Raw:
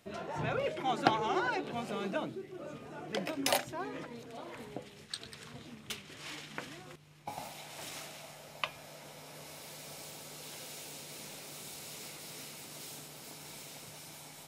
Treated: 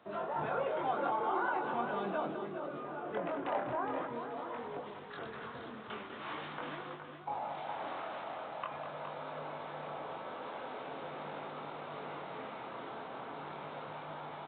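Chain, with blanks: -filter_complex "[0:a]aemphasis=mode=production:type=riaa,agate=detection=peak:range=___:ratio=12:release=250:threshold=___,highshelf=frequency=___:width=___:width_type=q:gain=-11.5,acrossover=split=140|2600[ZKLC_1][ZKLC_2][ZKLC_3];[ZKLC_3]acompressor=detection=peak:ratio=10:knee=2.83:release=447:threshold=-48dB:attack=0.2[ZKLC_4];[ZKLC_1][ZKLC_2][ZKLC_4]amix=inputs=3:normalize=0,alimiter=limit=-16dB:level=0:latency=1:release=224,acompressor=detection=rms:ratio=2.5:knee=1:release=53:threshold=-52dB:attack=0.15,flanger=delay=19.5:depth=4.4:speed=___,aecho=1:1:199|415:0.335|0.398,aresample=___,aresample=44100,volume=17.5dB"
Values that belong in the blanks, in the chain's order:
-7dB, -43dB, 1700, 1.5, 0.43, 8000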